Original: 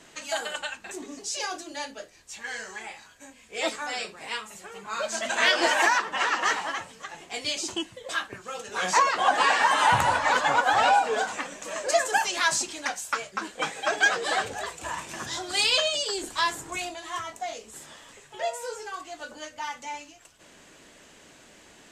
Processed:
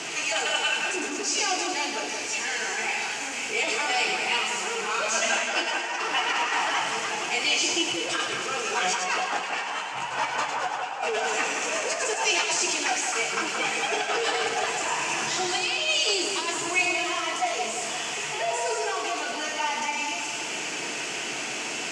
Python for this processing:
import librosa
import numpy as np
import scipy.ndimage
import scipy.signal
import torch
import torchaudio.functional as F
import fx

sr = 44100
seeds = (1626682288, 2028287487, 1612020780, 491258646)

p1 = x + 0.5 * 10.0 ** (-29.0 / 20.0) * np.sign(x)
p2 = fx.over_compress(p1, sr, threshold_db=-25.0, ratio=-0.5)
p3 = fx.cabinet(p2, sr, low_hz=280.0, low_slope=12, high_hz=7300.0, hz=(310.0, 570.0, 1100.0, 1700.0, 2600.0, 3800.0), db=(-5, -8, -5, -6, 6, -9))
p4 = p3 + fx.echo_split(p3, sr, split_hz=2100.0, low_ms=174, high_ms=105, feedback_pct=52, wet_db=-4.5, dry=0)
y = fx.rev_double_slope(p4, sr, seeds[0], early_s=0.22, late_s=4.7, knee_db=-20, drr_db=4.5)